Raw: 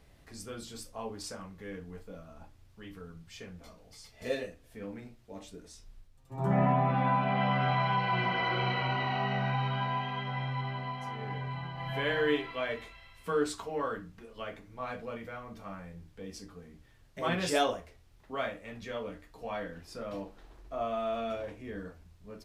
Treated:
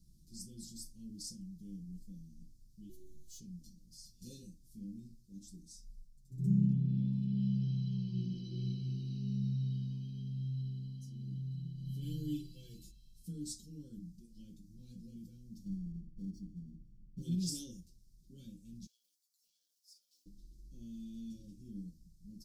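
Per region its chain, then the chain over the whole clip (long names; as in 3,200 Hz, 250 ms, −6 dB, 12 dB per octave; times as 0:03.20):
0:02.89–0:03.40: leveller curve on the samples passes 2 + phases set to zero 372 Hz
0:12.02–0:12.91: high-shelf EQ 9,000 Hz +8 dB + comb filter 6.1 ms, depth 93%
0:15.65–0:17.22: each half-wave held at its own peak + Savitzky-Golay smoothing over 41 samples
0:18.86–0:20.26: mu-law and A-law mismatch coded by A + high-pass filter 970 Hz 24 dB per octave + downward compressor, threshold −52 dBFS
whole clip: elliptic band-stop filter 250–5,100 Hz, stop band 50 dB; comb filter 5.7 ms, depth 77%; level −3 dB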